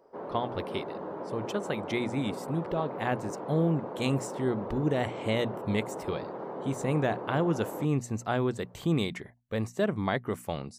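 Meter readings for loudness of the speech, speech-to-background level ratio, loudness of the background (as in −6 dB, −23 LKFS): −31.5 LKFS, 7.0 dB, −38.5 LKFS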